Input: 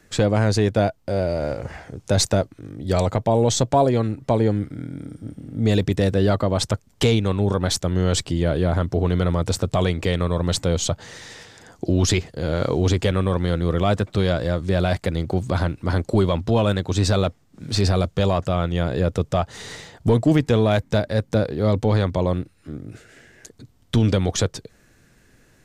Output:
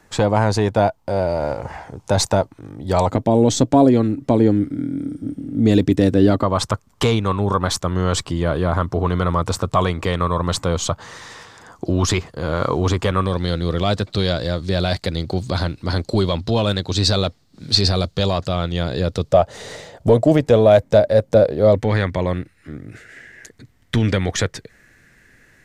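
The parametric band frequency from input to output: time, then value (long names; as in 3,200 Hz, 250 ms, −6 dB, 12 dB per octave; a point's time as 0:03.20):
parametric band +12.5 dB 0.67 octaves
910 Hz
from 0:03.10 280 Hz
from 0:06.43 1,100 Hz
from 0:13.26 4,300 Hz
from 0:19.32 580 Hz
from 0:21.75 1,900 Hz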